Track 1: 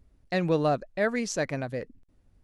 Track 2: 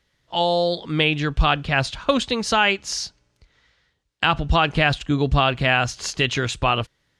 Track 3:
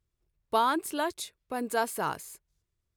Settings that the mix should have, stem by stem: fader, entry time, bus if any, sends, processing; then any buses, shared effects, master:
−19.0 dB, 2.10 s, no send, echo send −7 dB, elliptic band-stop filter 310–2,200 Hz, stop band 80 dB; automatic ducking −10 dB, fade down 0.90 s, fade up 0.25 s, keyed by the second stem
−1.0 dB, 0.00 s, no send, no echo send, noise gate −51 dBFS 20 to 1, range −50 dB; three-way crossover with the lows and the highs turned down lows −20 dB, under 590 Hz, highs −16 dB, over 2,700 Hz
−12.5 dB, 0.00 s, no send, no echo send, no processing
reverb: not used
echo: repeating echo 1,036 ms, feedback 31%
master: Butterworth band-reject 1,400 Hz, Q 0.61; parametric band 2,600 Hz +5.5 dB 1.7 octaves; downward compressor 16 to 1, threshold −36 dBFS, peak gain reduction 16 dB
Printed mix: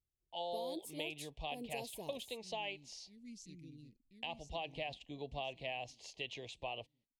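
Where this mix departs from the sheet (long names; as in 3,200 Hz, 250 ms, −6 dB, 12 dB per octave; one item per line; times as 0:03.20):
stem 2 −1.0 dB → −10.5 dB
master: missing parametric band 2,600 Hz +5.5 dB 1.7 octaves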